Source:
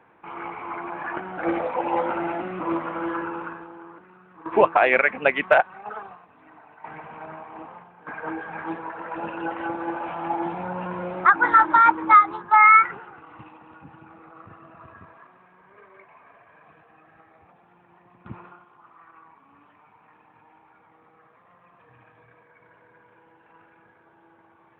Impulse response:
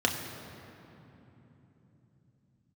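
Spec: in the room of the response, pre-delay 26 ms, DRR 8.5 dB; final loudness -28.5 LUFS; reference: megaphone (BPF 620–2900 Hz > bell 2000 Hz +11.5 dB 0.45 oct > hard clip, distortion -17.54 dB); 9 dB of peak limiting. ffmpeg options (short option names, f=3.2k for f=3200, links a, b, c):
-filter_complex "[0:a]alimiter=limit=-12.5dB:level=0:latency=1,asplit=2[a][b];[1:a]atrim=start_sample=2205,adelay=26[c];[b][c]afir=irnorm=-1:irlink=0,volume=-19.5dB[d];[a][d]amix=inputs=2:normalize=0,highpass=620,lowpass=2.9k,equalizer=f=2k:t=o:w=0.45:g=11.5,asoftclip=type=hard:threshold=-12.5dB,volume=-4.5dB"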